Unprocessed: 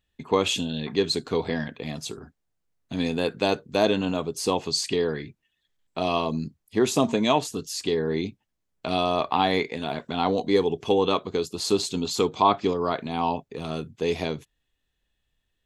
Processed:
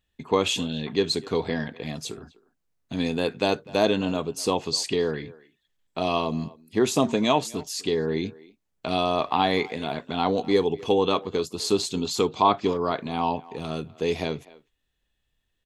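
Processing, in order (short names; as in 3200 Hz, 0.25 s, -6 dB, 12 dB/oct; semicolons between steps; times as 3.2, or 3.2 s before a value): speakerphone echo 0.25 s, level -20 dB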